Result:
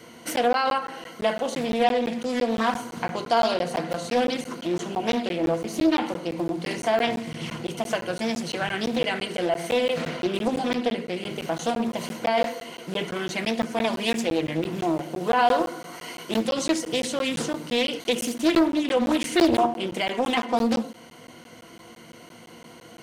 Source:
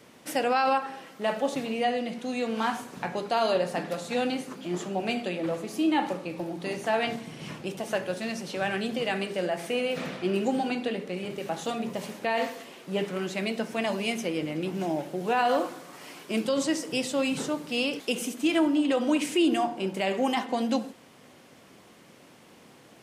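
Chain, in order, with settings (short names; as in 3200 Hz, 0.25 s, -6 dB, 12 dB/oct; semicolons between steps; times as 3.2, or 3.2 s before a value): ripple EQ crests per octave 1.9, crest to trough 11 dB; in parallel at -0.5 dB: compressor, threshold -34 dBFS, peak gain reduction 18 dB; on the sum: crackling interface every 0.17 s, samples 512, zero, from 0.36; Doppler distortion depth 0.51 ms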